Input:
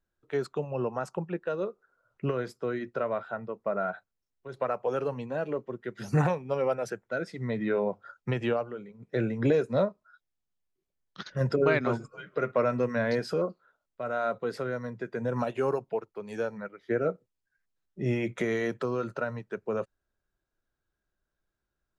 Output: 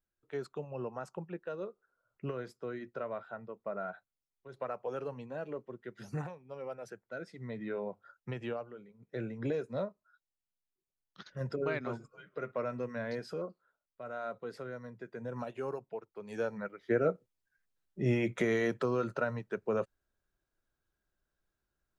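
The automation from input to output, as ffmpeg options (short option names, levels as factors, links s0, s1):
-af "volume=2.99,afade=t=out:st=5.99:d=0.32:silence=0.298538,afade=t=in:st=6.31:d=0.89:silence=0.354813,afade=t=in:st=16.04:d=0.56:silence=0.354813"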